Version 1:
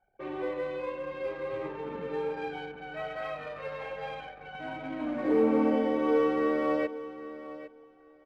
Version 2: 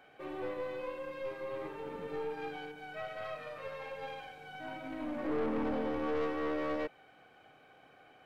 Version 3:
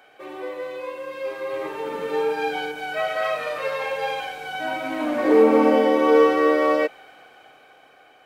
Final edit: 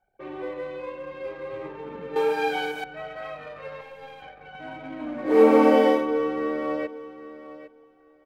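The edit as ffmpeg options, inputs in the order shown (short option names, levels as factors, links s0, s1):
-filter_complex "[2:a]asplit=2[s0][s1];[0:a]asplit=4[s2][s3][s4][s5];[s2]atrim=end=2.162[s6];[s0]atrim=start=2.158:end=2.842[s7];[s3]atrim=start=2.838:end=3.812[s8];[1:a]atrim=start=3.808:end=4.222[s9];[s4]atrim=start=4.218:end=5.42[s10];[s1]atrim=start=5.26:end=6.06[s11];[s5]atrim=start=5.9[s12];[s6][s7]acrossfade=d=0.004:c1=hsin:c2=hsin[s13];[s13][s8]acrossfade=d=0.004:c1=hsin:c2=hsin[s14];[s14][s9]acrossfade=d=0.004:c1=hsin:c2=hsin[s15];[s15][s10]acrossfade=d=0.004:c1=hsin:c2=hsin[s16];[s16][s11]acrossfade=d=0.16:c1=tri:c2=tri[s17];[s17][s12]acrossfade=d=0.16:c1=tri:c2=tri"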